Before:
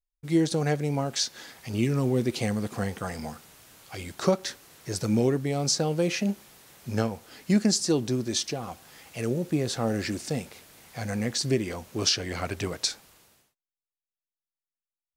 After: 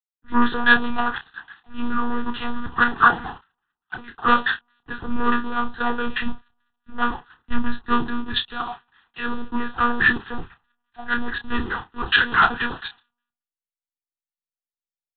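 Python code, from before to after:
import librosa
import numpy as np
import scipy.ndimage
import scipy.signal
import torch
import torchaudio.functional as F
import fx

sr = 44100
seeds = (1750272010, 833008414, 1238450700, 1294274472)

p1 = x + fx.room_early_taps(x, sr, ms=(34, 62), db=(-17.5, -16.0), dry=0)
p2 = fx.filter_lfo_lowpass(p1, sr, shape='square', hz=4.7, low_hz=750.0, high_hz=1700.0, q=2.8)
p3 = fx.leveller(p2, sr, passes=3)
p4 = fx.backlash(p3, sr, play_db=-26.5)
p5 = p3 + F.gain(torch.from_numpy(p4), -11.0).numpy()
p6 = fx.lpc_monotone(p5, sr, seeds[0], pitch_hz=240.0, order=10)
p7 = fx.tilt_shelf(p6, sr, db=-8.0, hz=690.0)
p8 = fx.fixed_phaser(p7, sr, hz=2200.0, stages=6)
p9 = fx.doubler(p8, sr, ms=30.0, db=-8.5)
p10 = fx.band_widen(p9, sr, depth_pct=100)
y = F.gain(torch.from_numpy(p10), -2.0).numpy()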